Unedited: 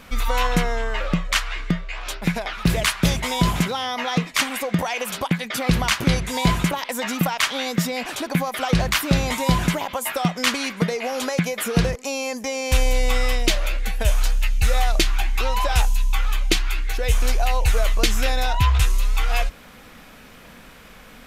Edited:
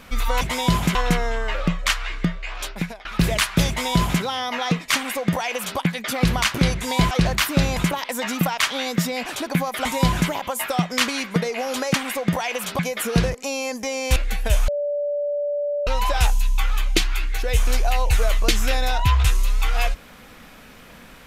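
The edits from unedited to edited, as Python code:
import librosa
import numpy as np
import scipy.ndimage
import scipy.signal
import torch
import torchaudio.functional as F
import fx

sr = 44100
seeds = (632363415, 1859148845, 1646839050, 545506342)

y = fx.edit(x, sr, fx.fade_out_to(start_s=2.1, length_s=0.41, floor_db=-21.5),
    fx.duplicate(start_s=3.14, length_s=0.54, to_s=0.41),
    fx.duplicate(start_s=4.4, length_s=0.85, to_s=11.4),
    fx.move(start_s=8.65, length_s=0.66, to_s=6.57),
    fx.cut(start_s=12.77, length_s=0.94),
    fx.bleep(start_s=14.23, length_s=1.19, hz=581.0, db=-21.0), tone=tone)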